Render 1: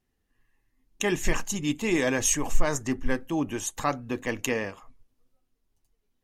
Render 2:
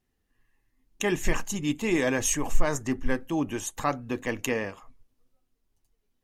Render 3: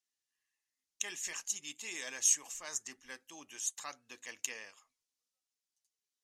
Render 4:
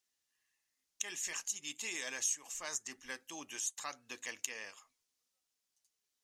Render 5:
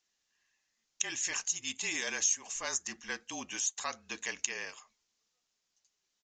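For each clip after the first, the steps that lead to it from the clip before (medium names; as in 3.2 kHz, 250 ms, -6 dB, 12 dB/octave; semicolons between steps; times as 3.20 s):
dynamic bell 5.3 kHz, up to -3 dB, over -41 dBFS, Q 0.73
band-pass filter 6.3 kHz, Q 1.3
compression 2.5:1, threshold -43 dBFS, peak gain reduction 13 dB; trim +5 dB
resampled via 16 kHz; frequency shift -36 Hz; trim +6 dB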